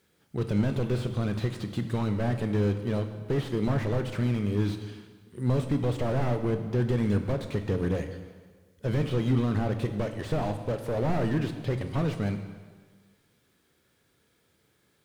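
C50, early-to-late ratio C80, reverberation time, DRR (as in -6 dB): 9.0 dB, 10.0 dB, 1.5 s, 7.0 dB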